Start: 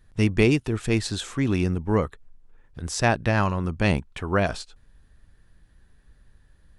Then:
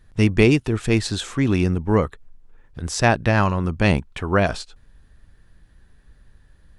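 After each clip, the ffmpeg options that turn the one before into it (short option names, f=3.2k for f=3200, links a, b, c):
-af "highshelf=f=9.4k:g=-4,volume=4dB"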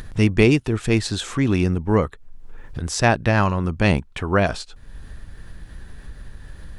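-af "acompressor=mode=upward:threshold=-22dB:ratio=2.5"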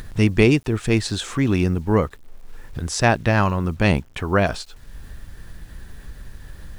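-af "acrusher=bits=8:mix=0:aa=0.000001"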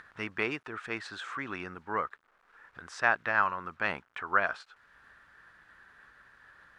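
-af "bandpass=f=1.4k:t=q:w=2.6:csg=0"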